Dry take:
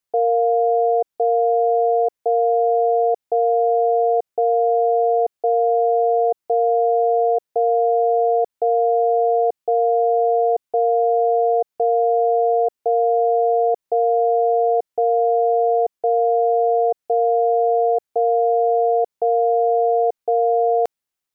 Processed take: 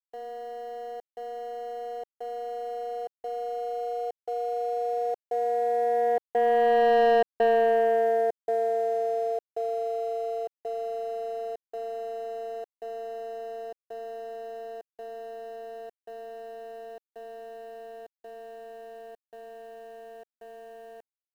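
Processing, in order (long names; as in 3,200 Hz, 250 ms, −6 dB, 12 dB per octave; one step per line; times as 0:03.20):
source passing by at 0:07.11, 8 m/s, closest 3.8 metres
leveller curve on the samples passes 2
bit-depth reduction 10 bits, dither none
level −5 dB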